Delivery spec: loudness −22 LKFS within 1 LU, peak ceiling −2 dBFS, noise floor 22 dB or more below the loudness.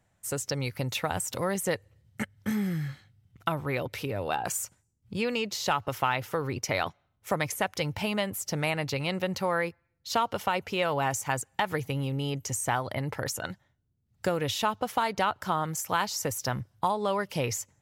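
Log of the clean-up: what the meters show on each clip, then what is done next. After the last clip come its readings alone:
number of dropouts 1; longest dropout 1.5 ms; integrated loudness −30.5 LKFS; sample peak −13.0 dBFS; target loudness −22.0 LKFS
→ repair the gap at 0:07.55, 1.5 ms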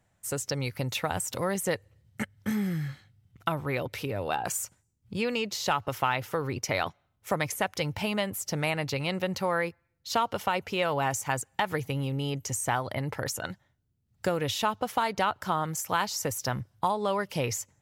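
number of dropouts 0; integrated loudness −30.5 LKFS; sample peak −13.0 dBFS; target loudness −22.0 LKFS
→ level +8.5 dB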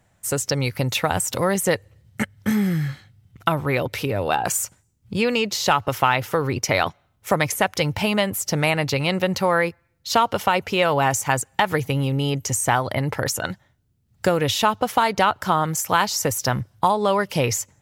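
integrated loudness −22.0 LKFS; sample peak −4.5 dBFS; background noise floor −65 dBFS

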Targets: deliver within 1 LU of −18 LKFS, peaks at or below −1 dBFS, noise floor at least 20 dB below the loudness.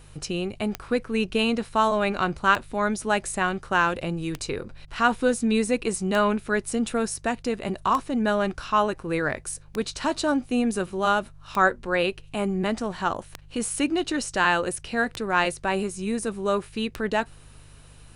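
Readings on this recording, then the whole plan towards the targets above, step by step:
number of clicks 10; mains hum 50 Hz; hum harmonics up to 150 Hz; level of the hum −48 dBFS; integrated loudness −25.5 LKFS; sample peak −6.5 dBFS; target loudness −18.0 LKFS
→ click removal
hum removal 50 Hz, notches 3
level +7.5 dB
brickwall limiter −1 dBFS

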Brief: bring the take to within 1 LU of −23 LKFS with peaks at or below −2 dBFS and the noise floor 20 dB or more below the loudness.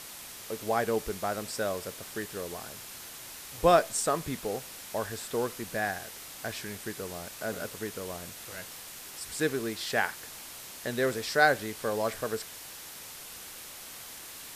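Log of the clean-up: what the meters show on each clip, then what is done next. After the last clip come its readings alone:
background noise floor −45 dBFS; target noise floor −53 dBFS; integrated loudness −32.5 LKFS; sample peak −7.5 dBFS; target loudness −23.0 LKFS
→ broadband denoise 8 dB, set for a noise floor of −45 dBFS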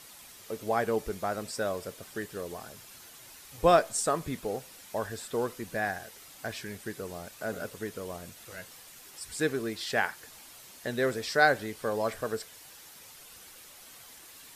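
background noise floor −51 dBFS; target noise floor −52 dBFS
→ broadband denoise 6 dB, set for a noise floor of −51 dBFS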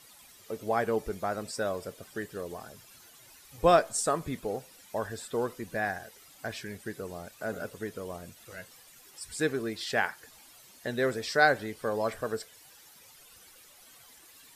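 background noise floor −56 dBFS; integrated loudness −31.5 LKFS; sample peak −7.5 dBFS; target loudness −23.0 LKFS
→ level +8.5 dB
brickwall limiter −2 dBFS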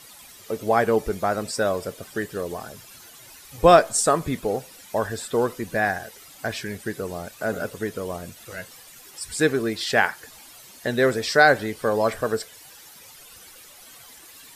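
integrated loudness −23.5 LKFS; sample peak −2.0 dBFS; background noise floor −47 dBFS

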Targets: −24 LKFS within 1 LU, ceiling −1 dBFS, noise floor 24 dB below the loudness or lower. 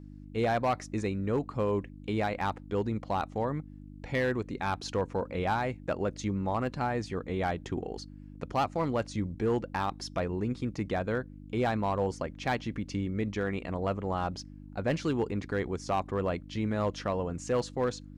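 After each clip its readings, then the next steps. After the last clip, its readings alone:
share of clipped samples 0.8%; peaks flattened at −21.5 dBFS; mains hum 50 Hz; hum harmonics up to 300 Hz; level of the hum −46 dBFS; integrated loudness −32.0 LKFS; sample peak −21.5 dBFS; target loudness −24.0 LKFS
→ clipped peaks rebuilt −21.5 dBFS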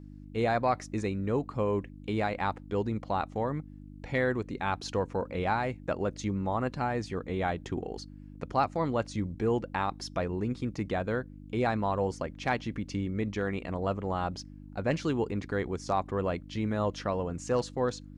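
share of clipped samples 0.0%; mains hum 50 Hz; hum harmonics up to 300 Hz; level of the hum −46 dBFS
→ hum removal 50 Hz, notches 6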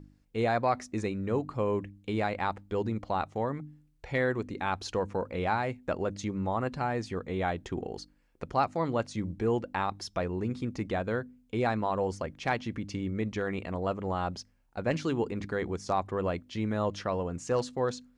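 mains hum none found; integrated loudness −32.0 LKFS; sample peak −13.0 dBFS; target loudness −24.0 LKFS
→ level +8 dB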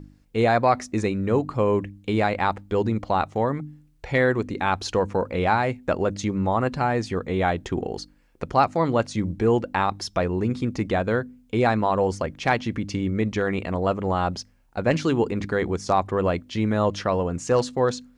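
integrated loudness −24.0 LKFS; sample peak −5.0 dBFS; background noise floor −57 dBFS

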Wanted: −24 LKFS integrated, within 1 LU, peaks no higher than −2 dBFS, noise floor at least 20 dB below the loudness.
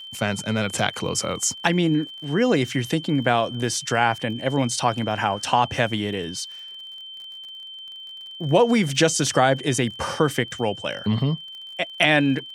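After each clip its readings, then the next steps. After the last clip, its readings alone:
crackle rate 40 per second; interfering tone 3,100 Hz; level of the tone −36 dBFS; integrated loudness −22.5 LKFS; sample peak −4.0 dBFS; target loudness −24.0 LKFS
→ click removal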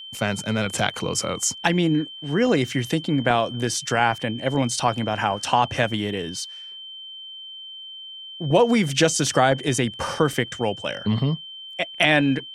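crackle rate 0.080 per second; interfering tone 3,100 Hz; level of the tone −36 dBFS
→ notch filter 3,100 Hz, Q 30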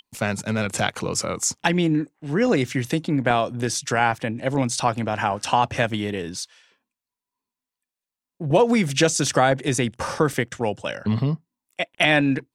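interfering tone none found; integrated loudness −22.5 LKFS; sample peak −4.0 dBFS; target loudness −24.0 LKFS
→ level −1.5 dB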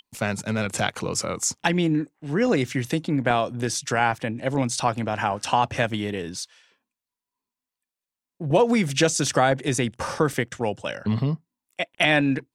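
integrated loudness −24.0 LKFS; sample peak −5.5 dBFS; background noise floor −90 dBFS

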